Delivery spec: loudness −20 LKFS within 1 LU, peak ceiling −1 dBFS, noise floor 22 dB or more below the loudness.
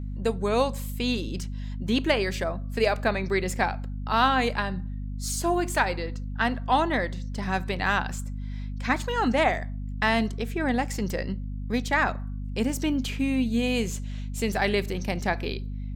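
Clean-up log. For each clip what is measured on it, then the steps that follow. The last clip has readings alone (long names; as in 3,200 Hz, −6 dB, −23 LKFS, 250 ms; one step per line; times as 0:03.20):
mains hum 50 Hz; hum harmonics up to 250 Hz; level of the hum −30 dBFS; integrated loudness −27.0 LKFS; sample peak −9.0 dBFS; target loudness −20.0 LKFS
→ hum removal 50 Hz, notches 5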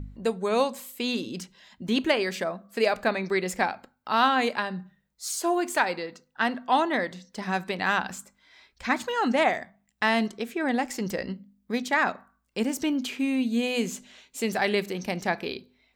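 mains hum none found; integrated loudness −27.5 LKFS; sample peak −9.5 dBFS; target loudness −20.0 LKFS
→ level +7.5 dB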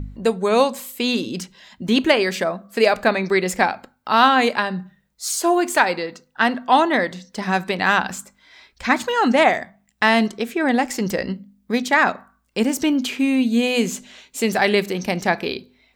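integrated loudness −20.0 LKFS; sample peak −2.0 dBFS; background noise floor −64 dBFS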